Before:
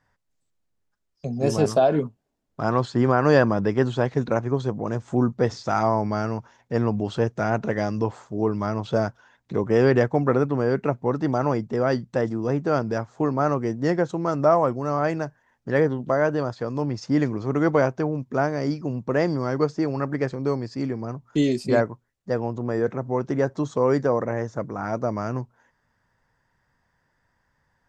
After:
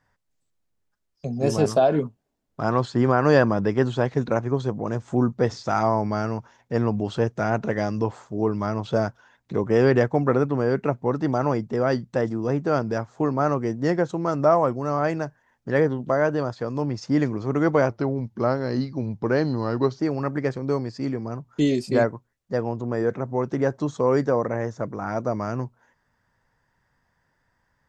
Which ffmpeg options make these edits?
ffmpeg -i in.wav -filter_complex "[0:a]asplit=3[link_01][link_02][link_03];[link_01]atrim=end=17.894[link_04];[link_02]atrim=start=17.89:end=19.76,asetpts=PTS-STARTPTS,asetrate=39249,aresample=44100[link_05];[link_03]atrim=start=19.756[link_06];[link_04][link_05]acrossfade=duration=0.004:curve1=hsin:curve2=hsin[link_07];[link_07][link_06]acrossfade=duration=0.004:curve1=hsin:curve2=hsin" out.wav

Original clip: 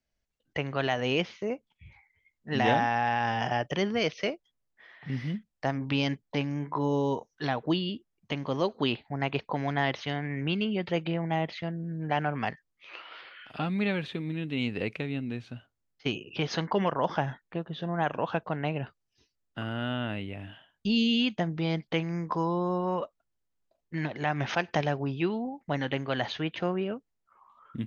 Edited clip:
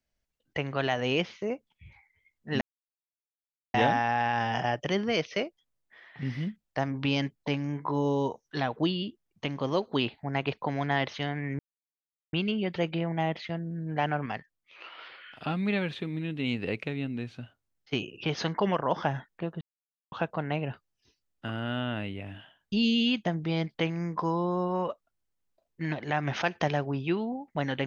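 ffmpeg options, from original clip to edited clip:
ffmpeg -i in.wav -filter_complex "[0:a]asplit=7[link_01][link_02][link_03][link_04][link_05][link_06][link_07];[link_01]atrim=end=2.61,asetpts=PTS-STARTPTS,afade=type=out:start_time=2.606:duration=0.004:curve=hsin,apad=pad_dur=1.13[link_08];[link_02]atrim=start=2.61:end=10.46,asetpts=PTS-STARTPTS,afade=type=in:duration=0.004:curve=hsin,afade=type=out:start_time=7.846:duration=0.004:curve=hsin,apad=pad_dur=0.74[link_09];[link_03]atrim=start=10.46:end=12.392,asetpts=PTS-STARTPTS,afade=type=in:duration=0.004:curve=hsin[link_10];[link_04]atrim=start=12.388:end=12.972,asetpts=PTS-STARTPTS,volume=-4dB[link_11];[link_05]atrim=start=12.968:end=17.74,asetpts=PTS-STARTPTS,afade=type=out:start_time=4.768:duration=0.004:curve=hsin[link_12];[link_06]atrim=start=17.74:end=18.25,asetpts=PTS-STARTPTS,volume=0[link_13];[link_07]atrim=start=18.25,asetpts=PTS-STARTPTS,afade=type=in:duration=0.004:curve=hsin[link_14];[link_08][link_09][link_10]concat=n=3:v=0:a=1[link_15];[link_15][link_11]acrossfade=duration=0.004:curve1=hsin:curve2=hsin[link_16];[link_12][link_13][link_14]concat=n=3:v=0:a=1[link_17];[link_16][link_17]acrossfade=duration=0.004:curve1=hsin:curve2=hsin" out.wav

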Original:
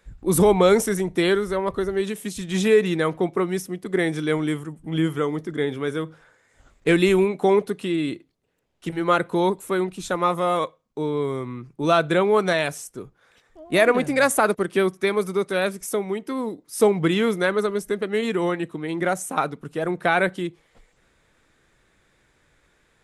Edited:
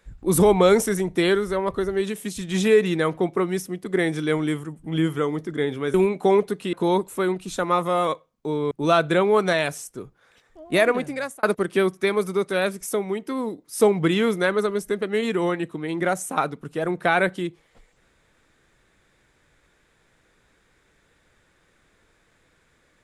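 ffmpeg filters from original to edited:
ffmpeg -i in.wav -filter_complex "[0:a]asplit=5[link_01][link_02][link_03][link_04][link_05];[link_01]atrim=end=5.942[link_06];[link_02]atrim=start=7.128:end=7.922[link_07];[link_03]atrim=start=9.248:end=11.232[link_08];[link_04]atrim=start=11.708:end=14.43,asetpts=PTS-STARTPTS,afade=type=out:start_time=2.012:duration=0.71[link_09];[link_05]atrim=start=14.43,asetpts=PTS-STARTPTS,afade=type=in:duration=0.004:curve=hsin[link_10];[link_06][link_07]acrossfade=duration=0.004:curve1=hsin:curve2=hsin[link_11];[link_11][link_08]acrossfade=duration=0.004:curve1=hsin:curve2=hsin[link_12];[link_09][link_10]concat=n=2:v=0:a=1[link_13];[link_12][link_13]acrossfade=duration=0.004:curve1=hsin:curve2=hsin" out.wav

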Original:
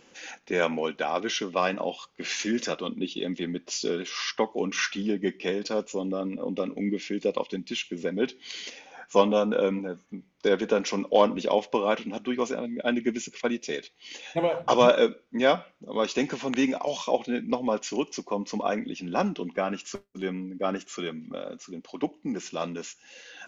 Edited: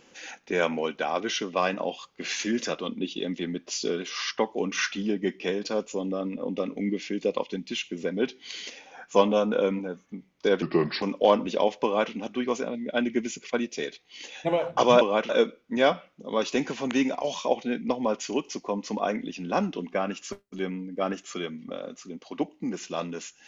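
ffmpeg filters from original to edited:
ffmpeg -i in.wav -filter_complex "[0:a]asplit=5[link_01][link_02][link_03][link_04][link_05];[link_01]atrim=end=10.624[link_06];[link_02]atrim=start=10.62:end=10.93,asetpts=PTS-STARTPTS,asetrate=33957,aresample=44100[link_07];[link_03]atrim=start=10.926:end=14.922[link_08];[link_04]atrim=start=11.748:end=12.032[link_09];[link_05]atrim=start=14.918[link_10];[link_06][link_07]acrossfade=duration=0.004:curve1=hsin:curve2=hsin[link_11];[link_11][link_08]acrossfade=duration=0.004:curve1=hsin:curve2=hsin[link_12];[link_12][link_09]acrossfade=duration=0.004:curve1=hsin:curve2=hsin[link_13];[link_13][link_10]acrossfade=duration=0.004:curve1=hsin:curve2=hsin" out.wav

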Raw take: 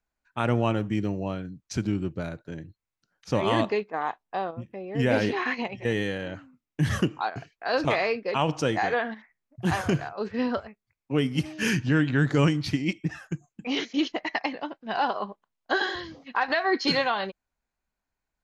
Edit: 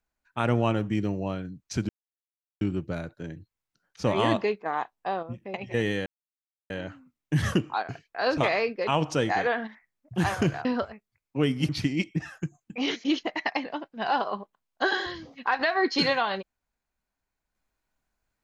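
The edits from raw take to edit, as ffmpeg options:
ffmpeg -i in.wav -filter_complex "[0:a]asplit=6[link_01][link_02][link_03][link_04][link_05][link_06];[link_01]atrim=end=1.89,asetpts=PTS-STARTPTS,afade=type=out:start_time=1.886:duration=0.004:curve=hsin,apad=pad_dur=0.72[link_07];[link_02]atrim=start=1.89:end=4.822,asetpts=PTS-STARTPTS,afade=type=in:duration=0.004:curve=hsin[link_08];[link_03]atrim=start=5.648:end=6.17,asetpts=PTS-STARTPTS,afade=type=out:start_time=0.518:duration=0.004:curve=hsin,apad=pad_dur=0.64[link_09];[link_04]atrim=start=6.17:end=10.122,asetpts=PTS-STARTPTS,afade=type=in:duration=0.004:curve=hsin[link_10];[link_05]atrim=start=10.398:end=11.442[link_11];[link_06]atrim=start=12.578[link_12];[link_07][link_08]concat=n=2:v=0:a=1[link_13];[link_09][link_10]concat=n=2:v=0:a=1[link_14];[link_13][link_14]acrossfade=duration=0.004:curve1=hsin:curve2=hsin[link_15];[link_15][link_11]acrossfade=duration=0.004:curve1=hsin:curve2=hsin[link_16];[link_16][link_12]acrossfade=duration=0.004:curve1=hsin:curve2=hsin" out.wav

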